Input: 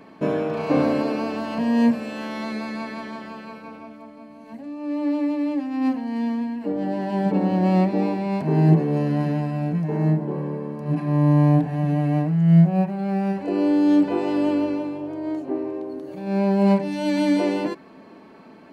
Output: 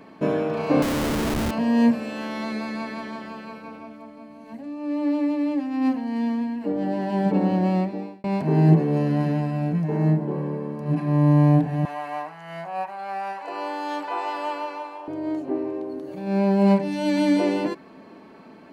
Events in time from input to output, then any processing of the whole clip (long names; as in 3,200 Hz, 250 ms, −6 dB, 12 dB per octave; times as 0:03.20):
0:00.82–0:01.51: comparator with hysteresis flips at −25.5 dBFS
0:07.49–0:08.24: fade out
0:11.85–0:15.08: high-pass with resonance 950 Hz, resonance Q 2.3